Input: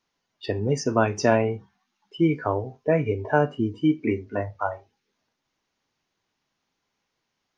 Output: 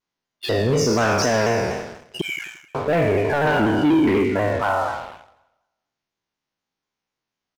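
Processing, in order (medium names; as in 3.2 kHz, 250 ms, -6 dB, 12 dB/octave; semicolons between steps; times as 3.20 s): spectral sustain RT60 1.31 s; 2.21–2.75 s: steep high-pass 1.7 kHz 72 dB/octave; 3.46–4.23 s: peaking EQ 2.2 kHz -> 560 Hz +7 dB 3 oct; waveshaping leveller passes 3; peak limiter -9.5 dBFS, peak gain reduction 5.5 dB; feedback delay 87 ms, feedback 60%, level -19.5 dB; vibrato with a chosen wave saw down 4.1 Hz, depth 100 cents; trim -4 dB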